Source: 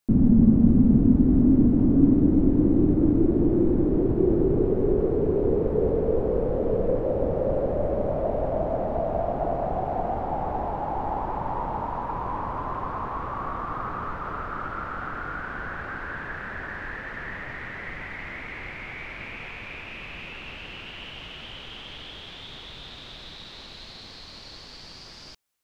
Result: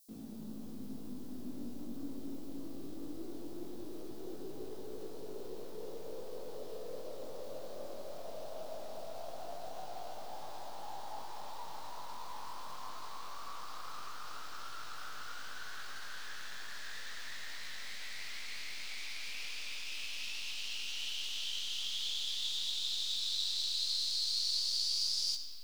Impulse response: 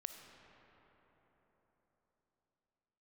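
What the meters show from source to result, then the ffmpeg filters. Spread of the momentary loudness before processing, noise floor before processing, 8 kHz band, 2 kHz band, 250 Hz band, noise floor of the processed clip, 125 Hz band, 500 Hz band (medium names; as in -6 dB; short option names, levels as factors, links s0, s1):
21 LU, -44 dBFS, no reading, -11.0 dB, -26.5 dB, -41 dBFS, -30.5 dB, -21.0 dB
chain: -filter_complex "[0:a]aderivative,aeval=exprs='0.0178*(cos(1*acos(clip(val(0)/0.0178,-1,1)))-cos(1*PI/2))+0.000708*(cos(4*acos(clip(val(0)/0.0178,-1,1)))-cos(4*PI/2))+0.000316*(cos(8*acos(clip(val(0)/0.0178,-1,1)))-cos(8*PI/2))':c=same,flanger=delay=18.5:depth=2.9:speed=0.2,highshelf=f=3000:t=q:w=1.5:g=12.5[s0];[1:a]atrim=start_sample=2205[s1];[s0][s1]afir=irnorm=-1:irlink=0,volume=2.51"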